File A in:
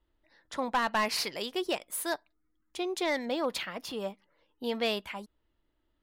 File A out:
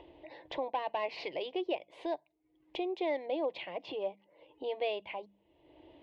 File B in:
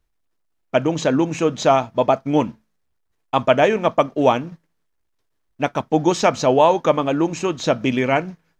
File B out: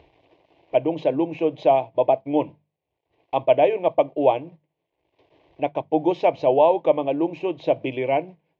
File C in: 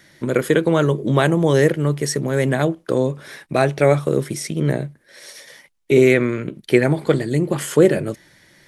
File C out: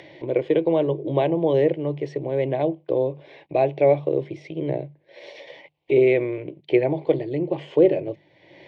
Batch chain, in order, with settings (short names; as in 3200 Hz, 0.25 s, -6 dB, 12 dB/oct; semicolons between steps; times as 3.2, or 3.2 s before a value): speaker cabinet 150–2700 Hz, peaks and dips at 290 Hz +5 dB, 440 Hz -3 dB, 1700 Hz -10 dB; notches 50/100/150/200 Hz; upward compressor, threshold -28 dBFS; fixed phaser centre 550 Hz, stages 4